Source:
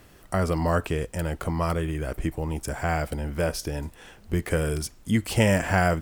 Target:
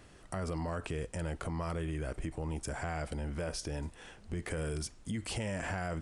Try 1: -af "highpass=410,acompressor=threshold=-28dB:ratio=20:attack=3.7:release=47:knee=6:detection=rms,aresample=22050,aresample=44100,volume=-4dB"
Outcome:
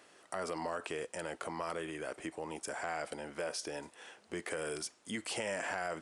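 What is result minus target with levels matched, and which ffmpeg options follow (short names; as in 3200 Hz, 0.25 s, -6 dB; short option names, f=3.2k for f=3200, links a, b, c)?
500 Hz band +2.5 dB
-af "acompressor=threshold=-28dB:ratio=20:attack=3.7:release=47:knee=6:detection=rms,aresample=22050,aresample=44100,volume=-4dB"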